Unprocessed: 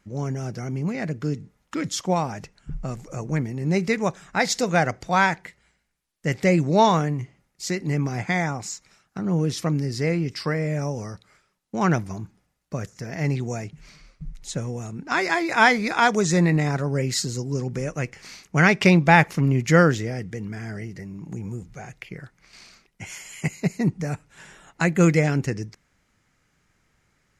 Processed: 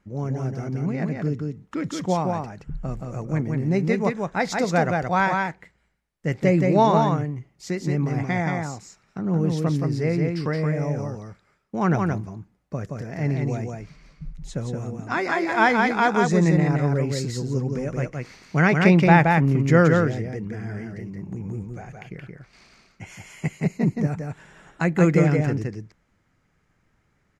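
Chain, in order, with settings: high shelf 2500 Hz -11 dB; echo 0.173 s -3.5 dB

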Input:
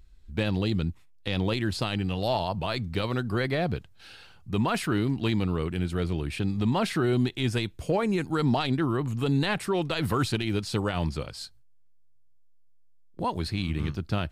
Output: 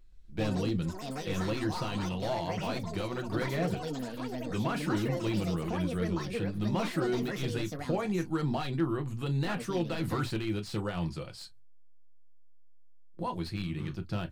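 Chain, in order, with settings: reverb, pre-delay 5 ms, DRR 5.5 dB; echoes that change speed 0.124 s, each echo +6 st, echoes 3, each echo -6 dB; slew limiter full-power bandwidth 110 Hz; gain -7.5 dB

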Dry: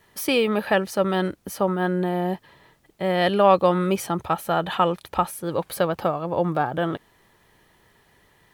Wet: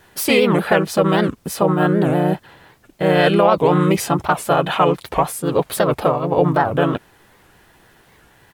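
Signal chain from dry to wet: harmoniser -3 st -1 dB; maximiser +8 dB; record warp 78 rpm, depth 250 cents; gain -3 dB

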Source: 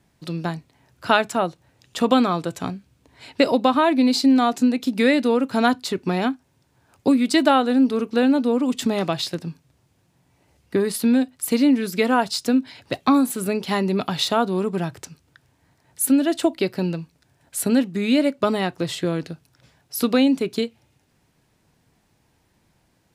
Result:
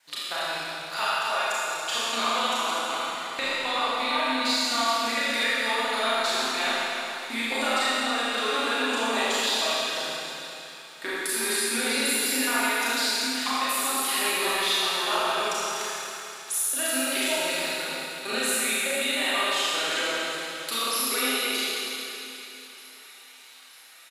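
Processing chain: slices in reverse order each 0.146 s, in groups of 2; HPF 1200 Hz 12 dB/oct; comb 7.3 ms, depth 39%; compressor, threshold -36 dBFS, peak gain reduction 19 dB; soft clip -20.5 dBFS, distortion -29 dB; on a send: thin delay 0.889 s, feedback 70%, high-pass 1600 Hz, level -21 dB; on the sum: Schroeder reverb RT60 3 s, combs from 26 ms, DRR -10 dB; speed mistake 25 fps video run at 24 fps; gain +4.5 dB

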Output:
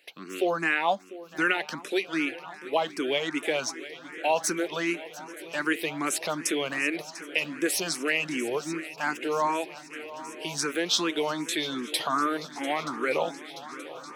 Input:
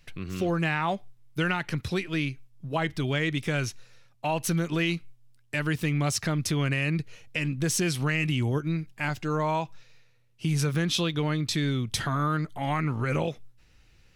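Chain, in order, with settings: HPF 290 Hz 24 dB/oct; swung echo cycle 0.927 s, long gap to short 3:1, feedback 68%, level -17 dB; endless phaser +2.6 Hz; gain +5.5 dB

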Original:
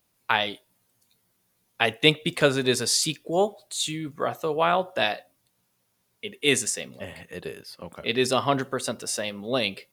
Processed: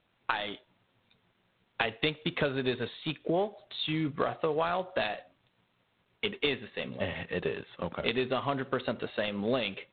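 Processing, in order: compressor 10:1, threshold -31 dBFS, peak gain reduction 19 dB; gain +5.5 dB; G.726 24 kbps 8000 Hz

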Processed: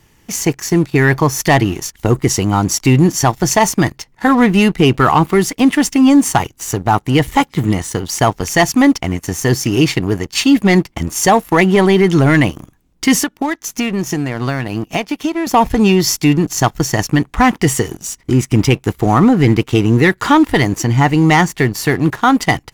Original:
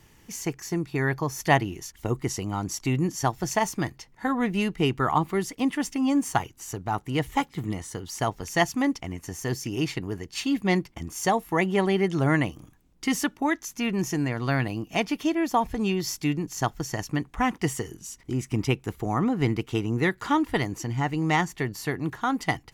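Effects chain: 13.18–15.47 compressor 16:1, threshold -30 dBFS, peak gain reduction 12 dB; sample leveller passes 2; maximiser +10 dB; gain -2 dB

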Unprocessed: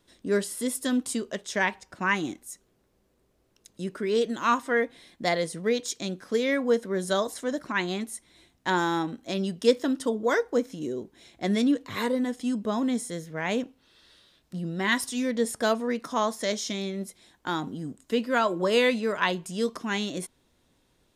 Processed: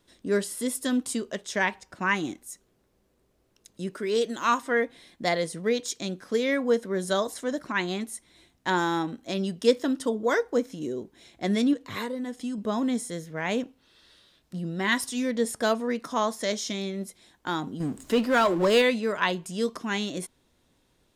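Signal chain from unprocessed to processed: 3.93–4.61 tone controls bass -5 dB, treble +4 dB; 11.73–12.58 compressor, threshold -29 dBFS, peak gain reduction 7.5 dB; 17.8–18.82 power-law curve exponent 0.7

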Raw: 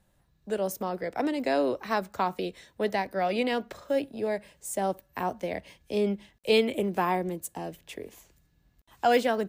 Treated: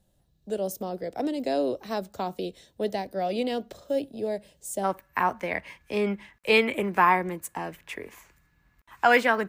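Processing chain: band shelf 1500 Hz -8.5 dB, from 4.83 s +10.5 dB

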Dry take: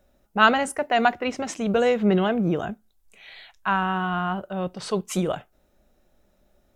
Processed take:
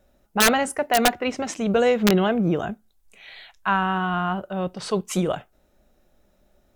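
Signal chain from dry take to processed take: wrapped overs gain 10.5 dB; vibrato 1.1 Hz 8.7 cents; gain +1.5 dB

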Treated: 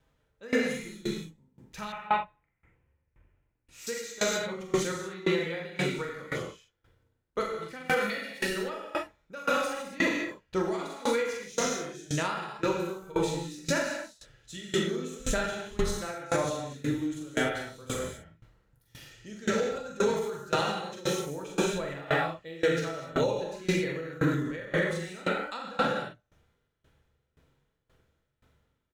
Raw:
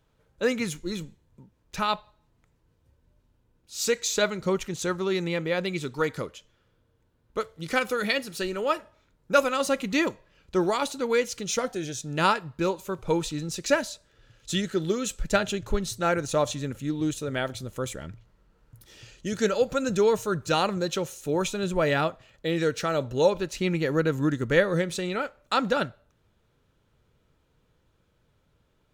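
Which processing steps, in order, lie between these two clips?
bell 1900 Hz +4 dB 0.45 oct; doubler 43 ms -3 dB; non-linear reverb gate 0.28 s flat, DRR -4 dB; limiter -12.5 dBFS, peak gain reduction 9.5 dB; 1.92–3.87 resonant high shelf 3200 Hz -10 dB, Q 3; dB-ramp tremolo decaying 1.9 Hz, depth 22 dB; gain -2 dB

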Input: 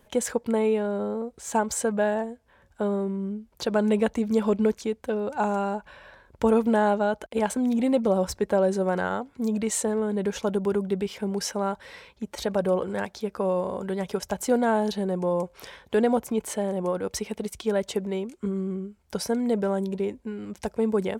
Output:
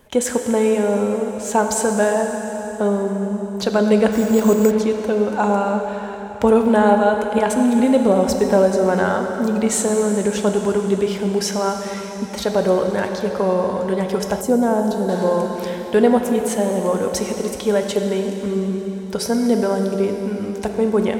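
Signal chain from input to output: plate-style reverb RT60 4.1 s, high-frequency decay 0.95×, DRR 3.5 dB; 4.12–4.71 careless resampling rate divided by 6×, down none, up hold; 14.41–15.09 bell 2700 Hz -11 dB 2.8 oct; gain +6.5 dB

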